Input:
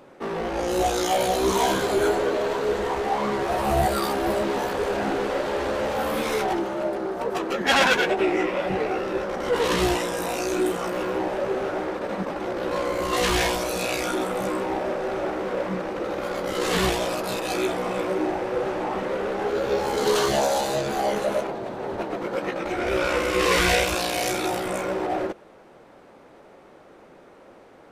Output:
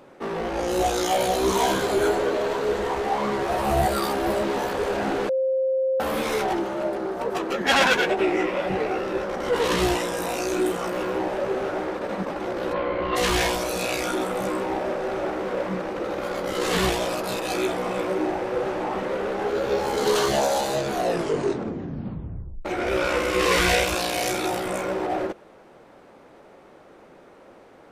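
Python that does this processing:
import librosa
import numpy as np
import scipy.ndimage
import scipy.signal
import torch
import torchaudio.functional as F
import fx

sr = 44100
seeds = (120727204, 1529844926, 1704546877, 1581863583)

y = fx.lowpass(x, sr, hz=3200.0, slope=24, at=(12.72, 13.15), fade=0.02)
y = fx.edit(y, sr, fx.bleep(start_s=5.29, length_s=0.71, hz=527.0, db=-19.5),
    fx.tape_stop(start_s=20.87, length_s=1.78), tone=tone)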